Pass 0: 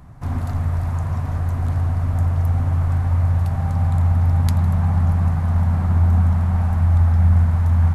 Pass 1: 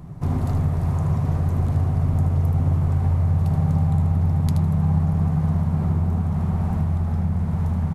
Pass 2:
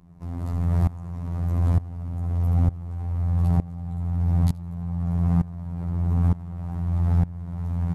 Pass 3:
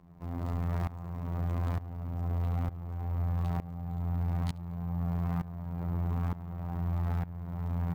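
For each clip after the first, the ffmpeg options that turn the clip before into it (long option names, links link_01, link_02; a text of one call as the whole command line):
ffmpeg -i in.wav -af "equalizer=frequency=160:width_type=o:width=0.67:gain=10,equalizer=frequency=400:width_type=o:width=0.67:gain=9,equalizer=frequency=1600:width_type=o:width=0.67:gain=-5,acompressor=threshold=-17dB:ratio=4,aecho=1:1:77:0.422" out.wav
ffmpeg -i in.wav -af "afftfilt=real='hypot(re,im)*cos(PI*b)':imag='0':win_size=2048:overlap=0.75,alimiter=limit=-15.5dB:level=0:latency=1:release=57,aeval=exprs='val(0)*pow(10,-20*if(lt(mod(-1.1*n/s,1),2*abs(-1.1)/1000),1-mod(-1.1*n/s,1)/(2*abs(-1.1)/1000),(mod(-1.1*n/s,1)-2*abs(-1.1)/1000)/(1-2*abs(-1.1)/1000))/20)':channel_layout=same,volume=7dB" out.wav
ffmpeg -i in.wav -filter_complex "[0:a]acrossover=split=990[link_01][link_02];[link_01]alimiter=limit=-18dB:level=0:latency=1[link_03];[link_03][link_02]amix=inputs=2:normalize=0,acrusher=samples=3:mix=1:aa=0.000001,bass=frequency=250:gain=-6,treble=frequency=4000:gain=-7" out.wav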